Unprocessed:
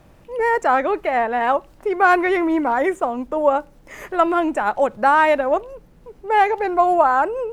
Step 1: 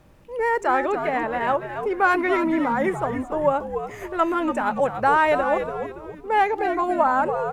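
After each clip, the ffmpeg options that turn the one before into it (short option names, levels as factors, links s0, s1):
-filter_complex "[0:a]bandreject=f=700:w=12,asplit=2[s0][s1];[s1]asplit=4[s2][s3][s4][s5];[s2]adelay=285,afreqshift=-100,volume=0.398[s6];[s3]adelay=570,afreqshift=-200,volume=0.155[s7];[s4]adelay=855,afreqshift=-300,volume=0.0603[s8];[s5]adelay=1140,afreqshift=-400,volume=0.0237[s9];[s6][s7][s8][s9]amix=inputs=4:normalize=0[s10];[s0][s10]amix=inputs=2:normalize=0,volume=0.668"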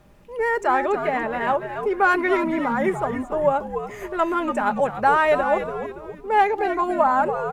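-af "aecho=1:1:4.9:0.34"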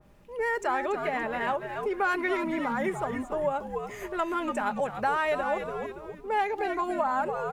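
-af "acompressor=threshold=0.0794:ratio=2,adynamicequalizer=threshold=0.0141:dfrequency=2000:dqfactor=0.7:tfrequency=2000:tqfactor=0.7:attack=5:release=100:ratio=0.375:range=2.5:mode=boostabove:tftype=highshelf,volume=0.562"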